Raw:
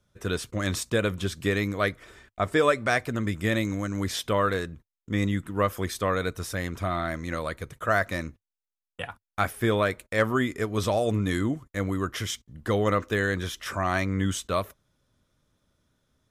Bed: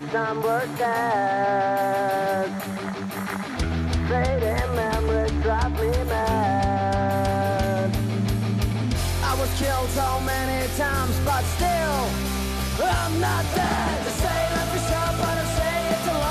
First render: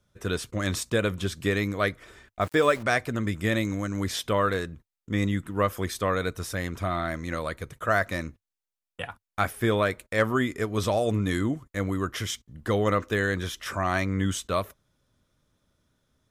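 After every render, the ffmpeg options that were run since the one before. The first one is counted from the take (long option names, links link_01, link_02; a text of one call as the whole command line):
ffmpeg -i in.wav -filter_complex "[0:a]asettb=1/sr,asplit=3[link_01][link_02][link_03];[link_01]atrim=end=2.414[link_04];[link_02]atrim=start=2.41:end=2.83,asetpts=PTS-STARTPTS,afade=type=in:duration=0.004:curve=qsin,afade=type=out:start_time=0.416:duration=0.004:curve=qsin,aeval=exprs='val(0)*gte(abs(val(0)),0.0119)':channel_layout=same[link_05];[link_03]atrim=start=2.826[link_06];[link_04][link_05]acrossfade=duration=0.004:curve1=hsin:curve2=qsin[link_07];[link_07][link_06]acrossfade=duration=0.004:curve1=qsin:curve2=hsin" out.wav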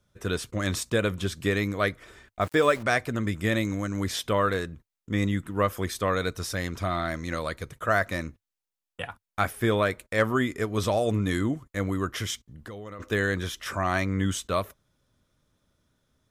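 ffmpeg -i in.wav -filter_complex "[0:a]asettb=1/sr,asplit=3[link_01][link_02][link_03];[link_01]atrim=end=6.074[link_04];[link_02]atrim=start=6.07:end=7.7,asetpts=PTS-STARTPTS,afade=type=in:duration=0.004:curve=qsin,afade=type=out:start_time=1.626:duration=0.004:curve=qsin,equalizer=frequency=4900:width=1.5:gain=5.5[link_05];[link_03]atrim=start=7.696[link_06];[link_04][link_05]acrossfade=duration=0.004:curve1=hsin:curve2=qsin[link_07];[link_07][link_06]acrossfade=duration=0.004:curve1=qsin:curve2=hsin,asplit=3[link_08][link_09][link_10];[link_08]afade=type=out:start_time=12.45:duration=0.02[link_11];[link_09]acompressor=threshold=-40dB:ratio=4:attack=3.2:release=140:knee=1:detection=peak,afade=type=in:start_time=12.45:duration=0.02,afade=type=out:start_time=12.99:duration=0.02[link_12];[link_10]afade=type=in:start_time=12.99:duration=0.02[link_13];[link_11][link_12][link_13]amix=inputs=3:normalize=0" out.wav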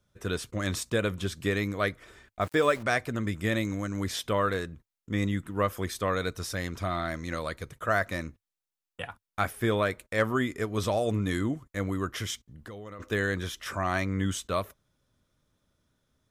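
ffmpeg -i in.wav -af "volume=-2.5dB" out.wav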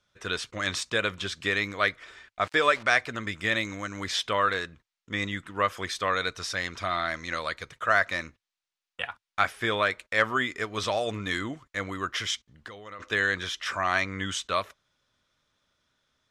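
ffmpeg -i in.wav -af "lowpass=5100,tiltshelf=frequency=640:gain=-8.5" out.wav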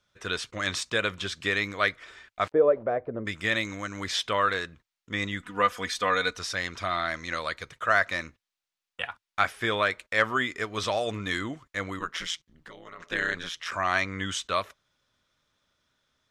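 ffmpeg -i in.wav -filter_complex "[0:a]asplit=3[link_01][link_02][link_03];[link_01]afade=type=out:start_time=2.5:duration=0.02[link_04];[link_02]lowpass=frequency=520:width_type=q:width=2.5,afade=type=in:start_time=2.5:duration=0.02,afade=type=out:start_time=3.25:duration=0.02[link_05];[link_03]afade=type=in:start_time=3.25:duration=0.02[link_06];[link_04][link_05][link_06]amix=inputs=3:normalize=0,asettb=1/sr,asplit=3[link_07][link_08][link_09];[link_07]atrim=end=5.404[link_10];[link_08]atrim=start=5.4:end=6.39,asetpts=PTS-STARTPTS,afade=type=in:duration=0.004:curve=qsin,afade=type=out:start_time=0.986:duration=0.004:curve=qsin,aecho=1:1:4.1:0.65,atrim=end_sample=43659[link_11];[link_09]atrim=start=6.386[link_12];[link_10][link_11]acrossfade=duration=0.004:curve1=hsin:curve2=qsin[link_13];[link_13][link_12]acrossfade=duration=0.004:curve1=qsin:curve2=hsin,asplit=3[link_14][link_15][link_16];[link_14]afade=type=out:start_time=11.99:duration=0.02[link_17];[link_15]aeval=exprs='val(0)*sin(2*PI*84*n/s)':channel_layout=same,afade=type=in:start_time=11.99:duration=0.02,afade=type=out:start_time=13.7:duration=0.02[link_18];[link_16]afade=type=in:start_time=13.7:duration=0.02[link_19];[link_17][link_18][link_19]amix=inputs=3:normalize=0" out.wav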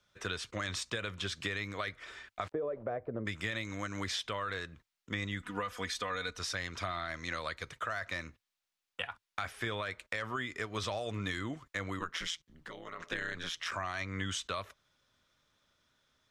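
ffmpeg -i in.wav -filter_complex "[0:a]acrossover=split=3500[link_01][link_02];[link_01]alimiter=limit=-18dB:level=0:latency=1:release=16[link_03];[link_03][link_02]amix=inputs=2:normalize=0,acrossover=split=120[link_04][link_05];[link_05]acompressor=threshold=-34dB:ratio=6[link_06];[link_04][link_06]amix=inputs=2:normalize=0" out.wav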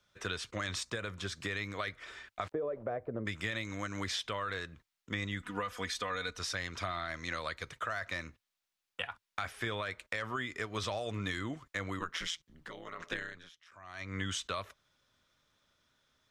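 ffmpeg -i in.wav -filter_complex "[0:a]asettb=1/sr,asplit=3[link_01][link_02][link_03];[link_01]atrim=end=0.834[link_04];[link_02]atrim=start=0.83:end=1.49,asetpts=PTS-STARTPTS,afade=type=in:duration=0.004:curve=qsin,afade=type=out:start_time=0.656:duration=0.004:curve=qsin,equalizer=frequency=3000:width=1.7:gain=-6.5[link_05];[link_03]atrim=start=1.486[link_06];[link_04][link_05]acrossfade=duration=0.004:curve1=hsin:curve2=qsin[link_07];[link_07][link_06]acrossfade=duration=0.004:curve1=qsin:curve2=hsin,asplit=3[link_08][link_09][link_10];[link_08]atrim=end=13.62,asetpts=PTS-STARTPTS,afade=type=out:start_time=13.13:duration=0.49:curve=qua:silence=0.0668344[link_11];[link_09]atrim=start=13.62:end=13.66,asetpts=PTS-STARTPTS,volume=-23.5dB[link_12];[link_10]atrim=start=13.66,asetpts=PTS-STARTPTS,afade=type=in:duration=0.49:curve=qua:silence=0.0668344[link_13];[link_11][link_12][link_13]concat=n=3:v=0:a=1" out.wav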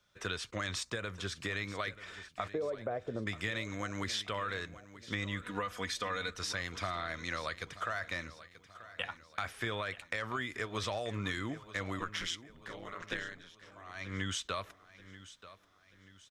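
ffmpeg -i in.wav -af "aecho=1:1:934|1868|2802|3736:0.158|0.0713|0.0321|0.0144" out.wav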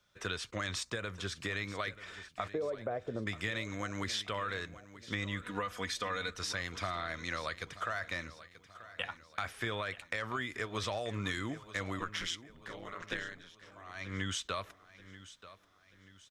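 ffmpeg -i in.wav -filter_complex "[0:a]asettb=1/sr,asplit=3[link_01][link_02][link_03];[link_01]atrim=end=11.164[link_04];[link_02]atrim=start=11.16:end=11.89,asetpts=PTS-STARTPTS,afade=type=in:duration=0.004:curve=qsin,afade=type=out:start_time=0.726:duration=0.004:curve=qsin,equalizer=frequency=8500:width_type=o:width=1.5:gain=3.5[link_05];[link_03]atrim=start=11.886[link_06];[link_04][link_05]acrossfade=duration=0.004:curve1=hsin:curve2=qsin[link_07];[link_07][link_06]acrossfade=duration=0.004:curve1=qsin:curve2=hsin" out.wav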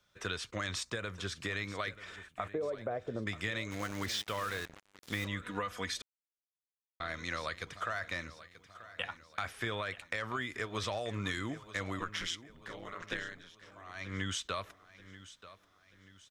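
ffmpeg -i in.wav -filter_complex "[0:a]asettb=1/sr,asplit=3[link_01][link_02][link_03];[link_01]atrim=end=2.164[link_04];[link_02]atrim=start=2.16:end=2.63,asetpts=PTS-STARTPTS,afade=type=in:duration=0.004:curve=qsin,afade=type=out:start_time=0.466:duration=0.004:curve=qsin,equalizer=frequency=5000:width_type=o:width=0.78:gain=-13.5[link_05];[link_03]atrim=start=2.626[link_06];[link_04][link_05]acrossfade=duration=0.004:curve1=hsin:curve2=qsin[link_07];[link_07][link_06]acrossfade=duration=0.004:curve1=qsin:curve2=hsin,asplit=3[link_08][link_09][link_10];[link_08]afade=type=out:start_time=3.7:duration=0.02[link_11];[link_09]acrusher=bits=6:mix=0:aa=0.5,afade=type=in:start_time=3.7:duration=0.02,afade=type=out:start_time=5.26:duration=0.02[link_12];[link_10]afade=type=in:start_time=5.26:duration=0.02[link_13];[link_11][link_12][link_13]amix=inputs=3:normalize=0,asplit=3[link_14][link_15][link_16];[link_14]atrim=end=6.02,asetpts=PTS-STARTPTS,afade=type=out:start_time=6.016:duration=0.004:curve=hsin[link_17];[link_15]atrim=start=6.02:end=7,asetpts=PTS-STARTPTS,volume=0[link_18];[link_16]atrim=start=7,asetpts=PTS-STARTPTS,afade=type=in:duration=0.004:curve=hsin[link_19];[link_17][link_18][link_19]concat=n=3:v=0:a=1" out.wav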